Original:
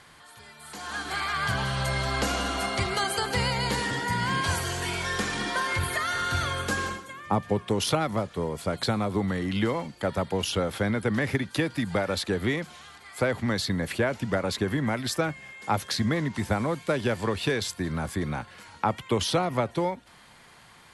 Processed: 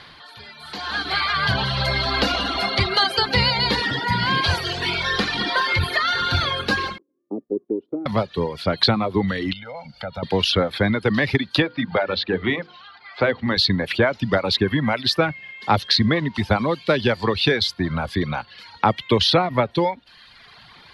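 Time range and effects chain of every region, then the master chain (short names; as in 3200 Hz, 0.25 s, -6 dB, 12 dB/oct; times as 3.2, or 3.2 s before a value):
6.98–8.06 Butterworth band-pass 330 Hz, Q 2.2 + gate -51 dBFS, range -13 dB
9.53–10.23 compressor 2.5:1, threshold -44 dBFS + high shelf 8300 Hz -11.5 dB + comb 1.4 ms, depth 99%
11.62–13.57 Gaussian blur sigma 2.1 samples + low shelf 110 Hz -9.5 dB + notches 50/100/150/200/250/300/350/400/450/500 Hz
whole clip: reverb removal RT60 1.1 s; resonant high shelf 5700 Hz -11 dB, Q 3; gain +7.5 dB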